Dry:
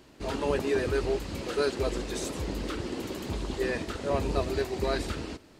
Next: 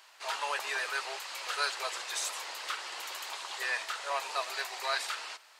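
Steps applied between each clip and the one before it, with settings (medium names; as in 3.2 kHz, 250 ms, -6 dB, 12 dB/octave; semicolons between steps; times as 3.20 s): high-pass 860 Hz 24 dB/octave; trim +4 dB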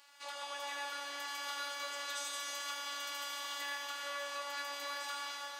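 compression 4:1, threshold -38 dBFS, peak gain reduction 10.5 dB; robot voice 285 Hz; reverberation RT60 4.9 s, pre-delay 68 ms, DRR -3 dB; trim -2.5 dB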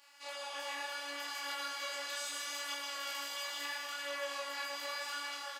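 chorus voices 2, 0.73 Hz, delay 29 ms, depth 4.5 ms; doubling 18 ms -3.5 dB; trim +2.5 dB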